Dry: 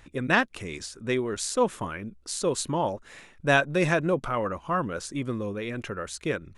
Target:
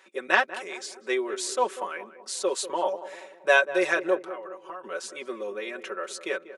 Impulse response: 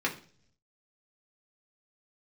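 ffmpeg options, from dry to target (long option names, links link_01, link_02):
-filter_complex "[0:a]highpass=frequency=390:width=0.5412,highpass=frequency=390:width=1.3066,highshelf=frequency=7300:gain=-4.5,aecho=1:1:5.3:0.88,asplit=3[link_01][link_02][link_03];[link_01]afade=type=out:start_time=4.23:duration=0.02[link_04];[link_02]acompressor=threshold=-37dB:ratio=6,afade=type=in:start_time=4.23:duration=0.02,afade=type=out:start_time=4.83:duration=0.02[link_05];[link_03]afade=type=in:start_time=4.83:duration=0.02[link_06];[link_04][link_05][link_06]amix=inputs=3:normalize=0,asplit=2[link_07][link_08];[link_08]adelay=192,lowpass=frequency=1100:poles=1,volume=-12.5dB,asplit=2[link_09][link_10];[link_10]adelay=192,lowpass=frequency=1100:poles=1,volume=0.54,asplit=2[link_11][link_12];[link_12]adelay=192,lowpass=frequency=1100:poles=1,volume=0.54,asplit=2[link_13][link_14];[link_14]adelay=192,lowpass=frequency=1100:poles=1,volume=0.54,asplit=2[link_15][link_16];[link_16]adelay=192,lowpass=frequency=1100:poles=1,volume=0.54,asplit=2[link_17][link_18];[link_18]adelay=192,lowpass=frequency=1100:poles=1,volume=0.54[link_19];[link_09][link_11][link_13][link_15][link_17][link_19]amix=inputs=6:normalize=0[link_20];[link_07][link_20]amix=inputs=2:normalize=0,volume=-1dB"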